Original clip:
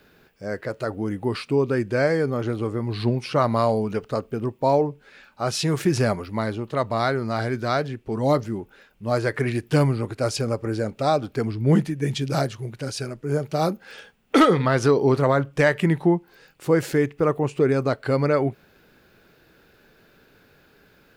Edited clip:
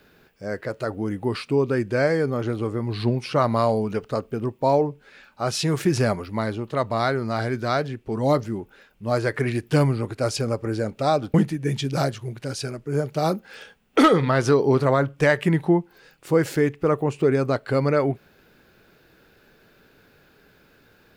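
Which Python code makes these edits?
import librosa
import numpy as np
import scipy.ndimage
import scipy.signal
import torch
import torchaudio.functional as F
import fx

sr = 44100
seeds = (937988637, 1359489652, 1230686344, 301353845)

y = fx.edit(x, sr, fx.cut(start_s=11.34, length_s=0.37), tone=tone)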